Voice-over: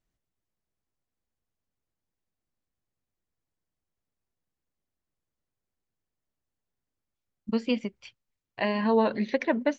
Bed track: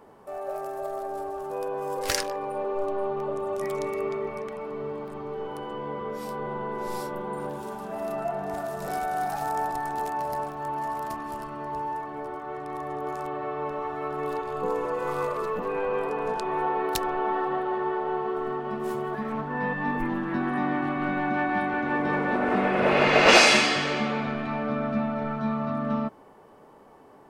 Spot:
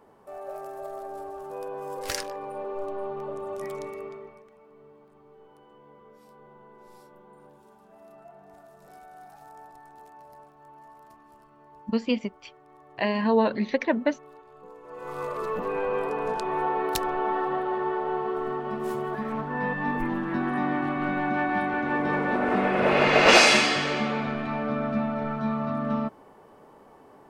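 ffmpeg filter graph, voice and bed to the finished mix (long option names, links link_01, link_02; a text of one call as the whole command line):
ffmpeg -i stem1.wav -i stem2.wav -filter_complex "[0:a]adelay=4400,volume=1.5dB[link_01];[1:a]volume=15dB,afade=type=out:start_time=3.66:duration=0.78:silence=0.177828,afade=type=in:start_time=14.83:duration=0.73:silence=0.105925[link_02];[link_01][link_02]amix=inputs=2:normalize=0" out.wav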